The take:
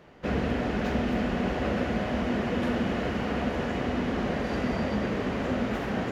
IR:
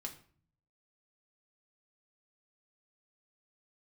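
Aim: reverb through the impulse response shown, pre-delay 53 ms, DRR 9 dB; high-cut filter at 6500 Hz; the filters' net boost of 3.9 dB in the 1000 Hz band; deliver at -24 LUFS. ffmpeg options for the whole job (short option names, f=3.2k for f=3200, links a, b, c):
-filter_complex "[0:a]lowpass=6.5k,equalizer=f=1k:t=o:g=5.5,asplit=2[a][b];[1:a]atrim=start_sample=2205,adelay=53[c];[b][c]afir=irnorm=-1:irlink=0,volume=-6.5dB[d];[a][d]amix=inputs=2:normalize=0,volume=3dB"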